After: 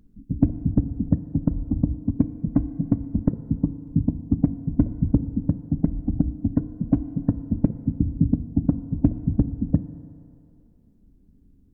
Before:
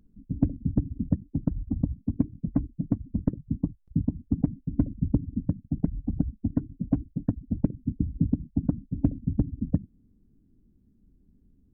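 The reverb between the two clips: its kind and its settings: FDN reverb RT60 2.8 s, low-frequency decay 0.7×, high-frequency decay 0.75×, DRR 12 dB; trim +4.5 dB

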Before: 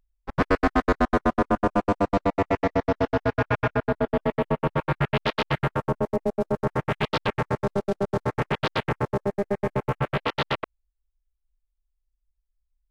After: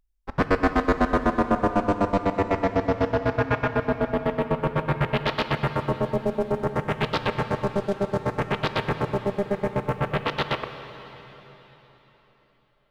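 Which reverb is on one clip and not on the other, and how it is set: plate-style reverb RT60 4 s, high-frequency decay 1×, DRR 8.5 dB

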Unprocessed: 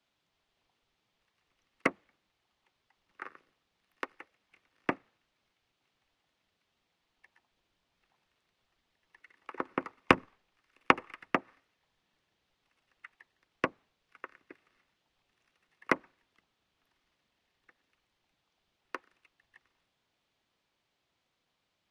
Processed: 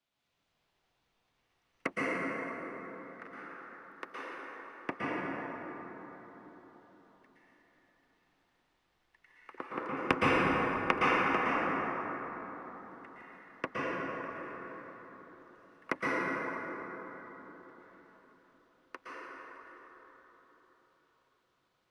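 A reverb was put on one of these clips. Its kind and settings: plate-style reverb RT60 4.5 s, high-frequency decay 0.4×, pre-delay 105 ms, DRR -8.5 dB; trim -7 dB

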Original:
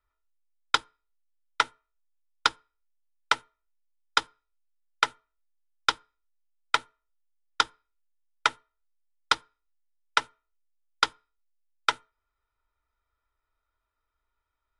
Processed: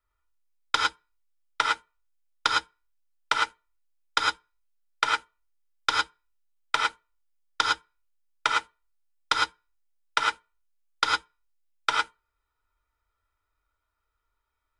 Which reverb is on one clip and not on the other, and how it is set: gated-style reverb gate 130 ms rising, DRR -1.5 dB; trim -2 dB

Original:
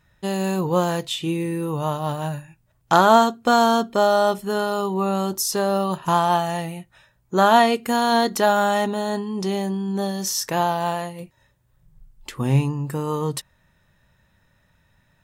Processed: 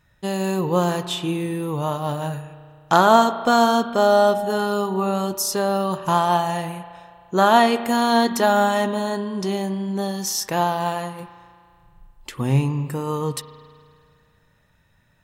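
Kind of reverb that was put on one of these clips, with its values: spring tank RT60 2.2 s, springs 34 ms, chirp 20 ms, DRR 11.5 dB

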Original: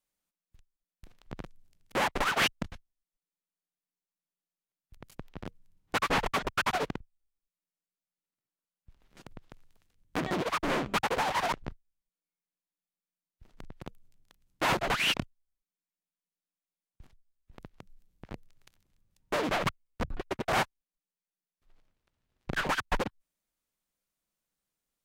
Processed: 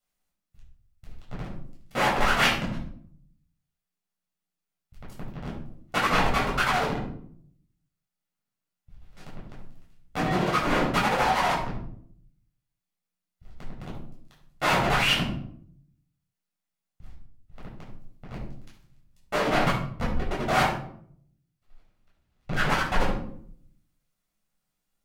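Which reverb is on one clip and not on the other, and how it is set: simulated room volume 870 m³, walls furnished, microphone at 6.9 m; trim -3.5 dB

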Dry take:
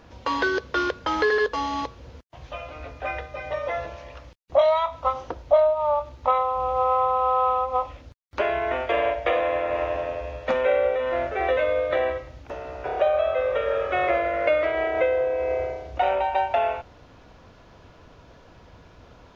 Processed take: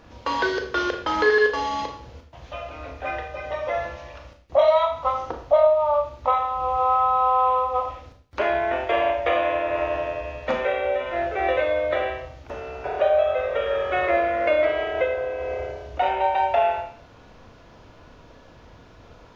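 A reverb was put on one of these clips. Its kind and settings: Schroeder reverb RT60 0.5 s, combs from 26 ms, DRR 3.5 dB

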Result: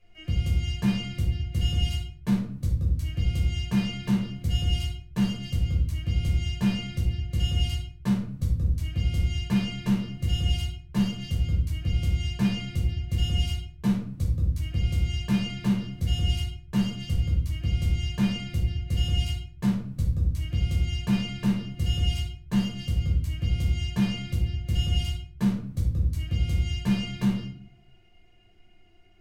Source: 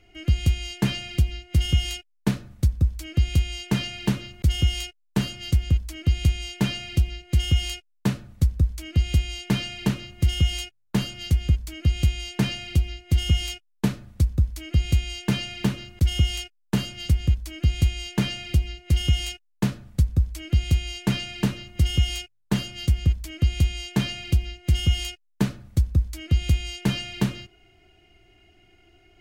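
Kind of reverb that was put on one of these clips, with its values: simulated room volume 530 m³, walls furnished, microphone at 5.7 m; trim -13.5 dB

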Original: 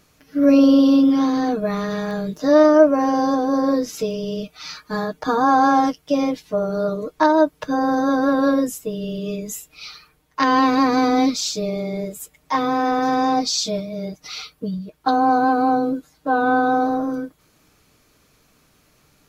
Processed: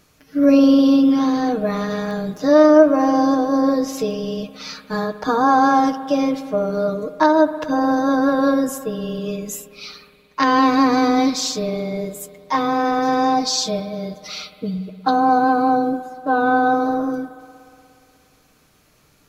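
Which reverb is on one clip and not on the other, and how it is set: spring tank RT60 2.6 s, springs 59 ms, chirp 60 ms, DRR 12.5 dB; trim +1 dB

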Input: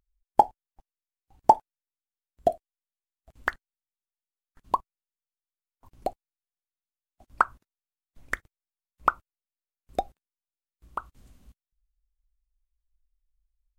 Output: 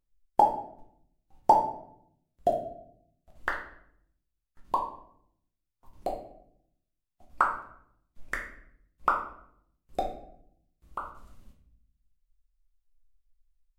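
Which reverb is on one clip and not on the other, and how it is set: simulated room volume 130 m³, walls mixed, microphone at 0.96 m; trim -4.5 dB

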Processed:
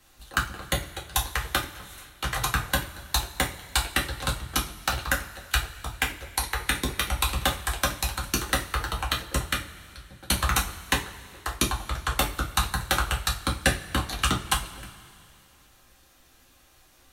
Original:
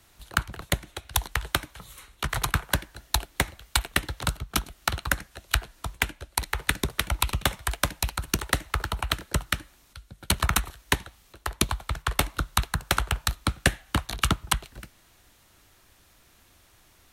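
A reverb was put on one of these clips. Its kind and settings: two-slope reverb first 0.26 s, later 2.5 s, from -21 dB, DRR -2.5 dB; trim -3.5 dB

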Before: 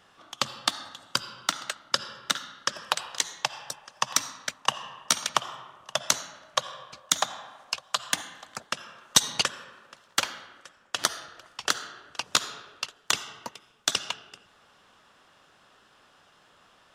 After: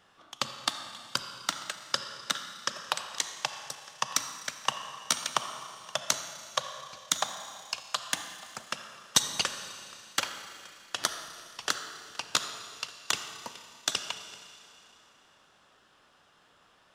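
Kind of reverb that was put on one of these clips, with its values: Schroeder reverb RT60 2.9 s, combs from 28 ms, DRR 9.5 dB; trim -4 dB

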